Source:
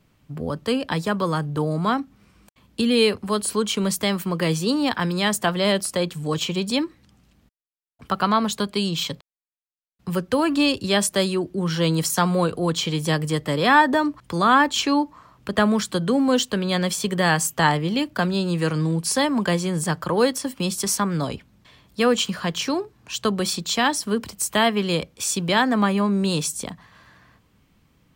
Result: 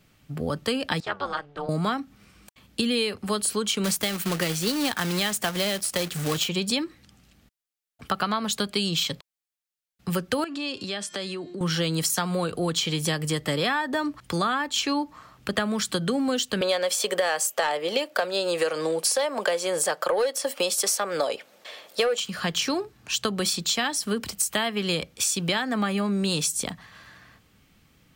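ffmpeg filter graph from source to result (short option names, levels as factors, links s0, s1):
-filter_complex "[0:a]asettb=1/sr,asplit=3[s0][s1][s2];[s0]atrim=end=1.004[s3];[s1]atrim=start=1:end=1.69,asetpts=PTS-STARTPTS,afade=t=in:d=0.004:c=qsin,afade=t=out:st=0.686:d=0.004:c=qsin,highpass=550,lowpass=3300,tremolo=f=290:d=0.889[s4];[s2]atrim=start=1.686[s5];[s3][s4]acrossfade=d=0.004:c1=hsin:c2=qsin[s6];[s6][s5]acrossfade=d=0.004:c1=qsin:c2=hsin,asettb=1/sr,asplit=3[s7][s8][s9];[s7]atrim=end=3.844[s10];[s8]atrim=start=3.84:end=6.49,asetpts=PTS-STARTPTS,afade=t=in:d=0.004:c=qsin,afade=t=out:st=2.646:d=0.004:c=qsin,acrusher=bits=2:mode=log:mix=0:aa=0.000001,acompressor=mode=upward:threshold=0.0447:ratio=2.5:attack=3.2:release=140:knee=2.83:detection=peak[s11];[s9]atrim=start=6.486[s12];[s10][s11]acrossfade=d=0.004:c1=hsin:c2=qsin[s13];[s13][s12]acrossfade=d=0.004:c1=qsin:c2=hsin,asettb=1/sr,asplit=3[s14][s15][s16];[s14]atrim=end=10.444[s17];[s15]atrim=start=10.44:end=11.61,asetpts=PTS-STARTPTS,afade=t=in:d=0.004:c=qsin,afade=t=out:st=1.166:d=0.004:c=qsin,bandreject=f=354.6:t=h:w=4,bandreject=f=709.2:t=h:w=4,bandreject=f=1063.8:t=h:w=4,bandreject=f=1418.4:t=h:w=4,bandreject=f=1773:t=h:w=4,bandreject=f=2127.6:t=h:w=4,bandreject=f=2482.2:t=h:w=4,bandreject=f=2836.8:t=h:w=4,bandreject=f=3191.4:t=h:w=4,bandreject=f=3546:t=h:w=4,bandreject=f=3900.6:t=h:w=4,bandreject=f=4255.2:t=h:w=4,bandreject=f=4609.8:t=h:w=4,bandreject=f=4964.4:t=h:w=4,bandreject=f=5319:t=h:w=4,bandreject=f=5673.6:t=h:w=4,bandreject=f=6028.2:t=h:w=4,bandreject=f=6382.8:t=h:w=4,bandreject=f=6737.4:t=h:w=4,bandreject=f=7092:t=h:w=4,bandreject=f=7446.6:t=h:w=4,bandreject=f=7801.2:t=h:w=4,acompressor=threshold=0.0316:ratio=6:attack=3.2:release=140:knee=1:detection=peak,highpass=170,lowpass=6500[s18];[s16]atrim=start=11.606[s19];[s17][s18]acrossfade=d=0.004:c1=hsin:c2=qsin[s20];[s20][s19]acrossfade=d=0.004:c1=qsin:c2=hsin,asettb=1/sr,asplit=3[s21][s22][s23];[s21]atrim=end=16.614[s24];[s22]atrim=start=16.61:end=22.2,asetpts=PTS-STARTPTS,afade=t=in:d=0.004:c=qsin,afade=t=out:st=5.586:d=0.004:c=qsin,highpass=f=540:t=q:w=3.3,acontrast=50[s25];[s23]atrim=start=22.196[s26];[s24][s25]acrossfade=d=0.004:c1=hsin:c2=qsin[s27];[s27][s26]acrossfade=d=0.004:c1=qsin:c2=hsin,tiltshelf=f=1100:g=-3,bandreject=f=1000:w=8,acompressor=threshold=0.0631:ratio=12,volume=1.33"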